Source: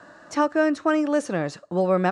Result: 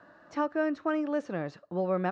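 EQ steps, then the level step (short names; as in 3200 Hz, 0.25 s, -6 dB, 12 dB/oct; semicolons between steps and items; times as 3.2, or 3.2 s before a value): air absorption 180 m; -7.5 dB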